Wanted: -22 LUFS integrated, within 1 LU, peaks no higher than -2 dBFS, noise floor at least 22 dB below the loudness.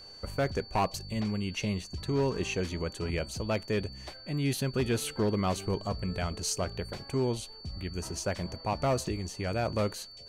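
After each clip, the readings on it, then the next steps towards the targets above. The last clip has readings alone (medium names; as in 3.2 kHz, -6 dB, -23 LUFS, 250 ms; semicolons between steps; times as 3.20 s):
clipped samples 0.9%; clipping level -22.0 dBFS; steady tone 4.5 kHz; tone level -47 dBFS; loudness -32.5 LUFS; peak level -22.0 dBFS; loudness target -22.0 LUFS
-> clip repair -22 dBFS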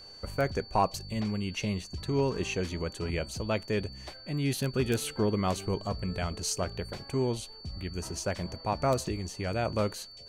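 clipped samples 0.0%; steady tone 4.5 kHz; tone level -47 dBFS
-> band-stop 4.5 kHz, Q 30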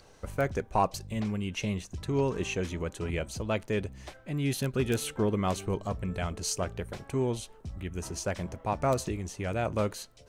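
steady tone not found; loudness -32.0 LUFS; peak level -13.0 dBFS; loudness target -22.0 LUFS
-> trim +10 dB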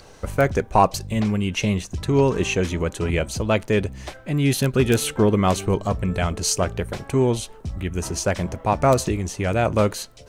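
loudness -22.0 LUFS; peak level -3.0 dBFS; noise floor -45 dBFS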